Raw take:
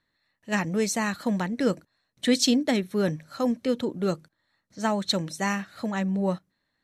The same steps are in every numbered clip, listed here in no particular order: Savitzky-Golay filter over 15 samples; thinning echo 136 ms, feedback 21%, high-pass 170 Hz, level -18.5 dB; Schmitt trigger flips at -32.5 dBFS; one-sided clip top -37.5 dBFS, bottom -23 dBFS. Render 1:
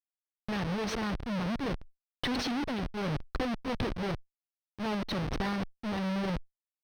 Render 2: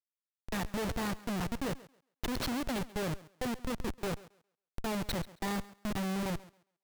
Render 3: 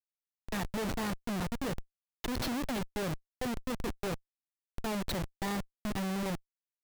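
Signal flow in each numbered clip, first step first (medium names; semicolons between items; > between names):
thinning echo > Schmitt trigger > one-sided clip > Savitzky-Golay filter; one-sided clip > Savitzky-Golay filter > Schmitt trigger > thinning echo; thinning echo > one-sided clip > Savitzky-Golay filter > Schmitt trigger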